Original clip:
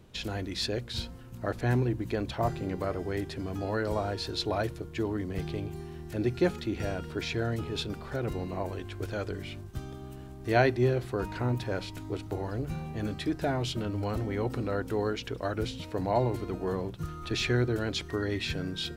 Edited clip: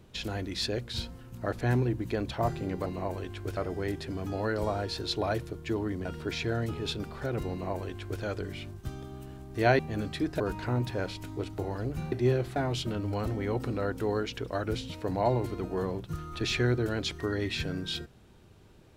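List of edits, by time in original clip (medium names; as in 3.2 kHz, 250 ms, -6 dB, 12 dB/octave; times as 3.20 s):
5.34–6.95 s: delete
8.41–9.12 s: copy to 2.86 s
10.69–11.13 s: swap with 12.85–13.46 s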